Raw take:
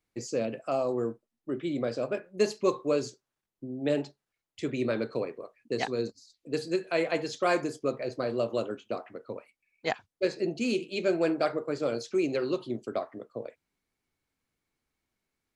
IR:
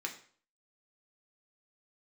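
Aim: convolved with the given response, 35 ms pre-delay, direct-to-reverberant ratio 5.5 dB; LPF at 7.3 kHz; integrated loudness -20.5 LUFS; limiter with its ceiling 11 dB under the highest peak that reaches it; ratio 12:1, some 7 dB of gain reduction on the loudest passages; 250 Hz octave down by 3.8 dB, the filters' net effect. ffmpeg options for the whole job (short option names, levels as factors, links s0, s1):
-filter_complex "[0:a]lowpass=7300,equalizer=f=250:t=o:g=-5.5,acompressor=threshold=0.0355:ratio=12,alimiter=level_in=1.41:limit=0.0631:level=0:latency=1,volume=0.708,asplit=2[s0][s1];[1:a]atrim=start_sample=2205,adelay=35[s2];[s1][s2]afir=irnorm=-1:irlink=0,volume=0.447[s3];[s0][s3]amix=inputs=2:normalize=0,volume=7.5"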